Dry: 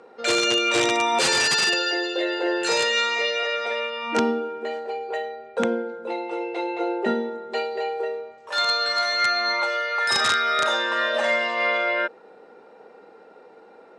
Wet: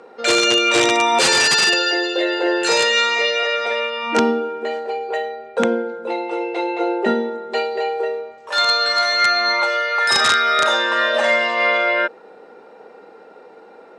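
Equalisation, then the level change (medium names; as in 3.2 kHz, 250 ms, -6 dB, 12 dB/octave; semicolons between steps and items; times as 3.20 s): bass shelf 75 Hz -8 dB; +5.5 dB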